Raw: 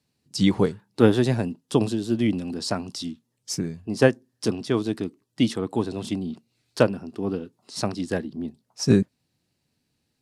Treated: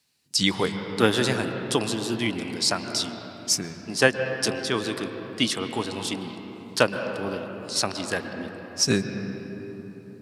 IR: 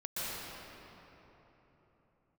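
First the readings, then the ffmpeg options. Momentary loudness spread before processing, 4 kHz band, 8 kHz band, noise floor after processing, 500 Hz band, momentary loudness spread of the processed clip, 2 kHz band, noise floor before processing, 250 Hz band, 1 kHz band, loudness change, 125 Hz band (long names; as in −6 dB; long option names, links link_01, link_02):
14 LU, +8.0 dB, +8.5 dB, −43 dBFS, −2.0 dB, 13 LU, +7.0 dB, −76 dBFS, −5.0 dB, +3.0 dB, −1.0 dB, −5.5 dB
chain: -filter_complex "[0:a]tiltshelf=frequency=860:gain=-9,asplit=2[link_01][link_02];[1:a]atrim=start_sample=2205,lowpass=2700[link_03];[link_02][link_03]afir=irnorm=-1:irlink=0,volume=-9.5dB[link_04];[link_01][link_04]amix=inputs=2:normalize=0"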